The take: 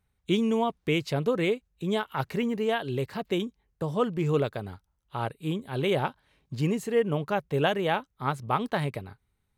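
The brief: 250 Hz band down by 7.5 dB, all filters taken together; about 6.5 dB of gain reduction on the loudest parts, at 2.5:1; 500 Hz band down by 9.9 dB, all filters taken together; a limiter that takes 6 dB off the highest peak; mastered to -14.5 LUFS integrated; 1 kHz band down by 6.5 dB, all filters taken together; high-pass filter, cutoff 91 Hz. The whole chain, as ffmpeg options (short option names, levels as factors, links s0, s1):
-af "highpass=91,equalizer=f=250:t=o:g=-8,equalizer=f=500:t=o:g=-8.5,equalizer=f=1000:t=o:g=-5,acompressor=threshold=0.0158:ratio=2.5,volume=20,alimiter=limit=0.794:level=0:latency=1"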